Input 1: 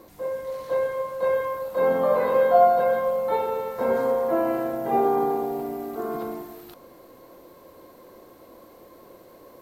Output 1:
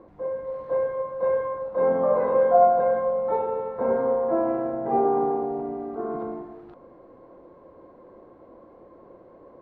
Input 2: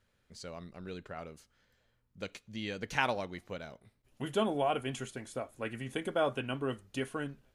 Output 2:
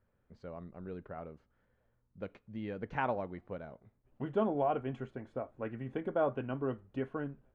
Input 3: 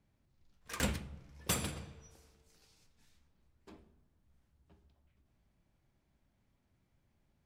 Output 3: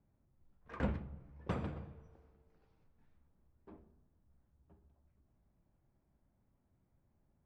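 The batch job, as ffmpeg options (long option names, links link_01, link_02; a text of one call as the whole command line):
ffmpeg -i in.wav -af "lowpass=1200" out.wav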